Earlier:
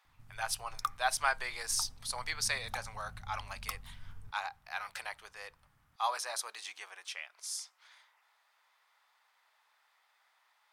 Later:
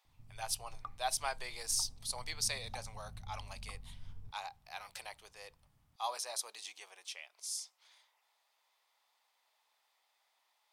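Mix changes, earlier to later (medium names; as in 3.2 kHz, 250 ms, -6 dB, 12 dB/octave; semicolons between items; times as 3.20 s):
background: add low-pass 1.3 kHz 12 dB/octave; master: add peaking EQ 1.5 kHz -12.5 dB 1.2 oct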